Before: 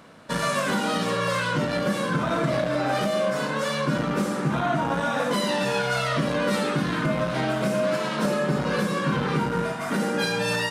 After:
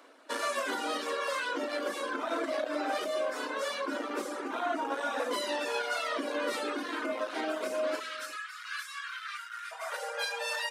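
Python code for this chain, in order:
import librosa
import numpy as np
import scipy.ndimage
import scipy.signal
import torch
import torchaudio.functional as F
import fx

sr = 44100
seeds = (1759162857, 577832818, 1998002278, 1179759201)

y = fx.dereverb_blind(x, sr, rt60_s=0.75)
y = fx.steep_highpass(y, sr, hz=fx.steps((0.0, 260.0), (7.99, 1200.0), (9.71, 490.0)), slope=72)
y = y + 10.0 ** (-17.0 / 20.0) * np.pad(y, (int(362 * sr / 1000.0), 0))[:len(y)]
y = y * 10.0 ** (-5.5 / 20.0)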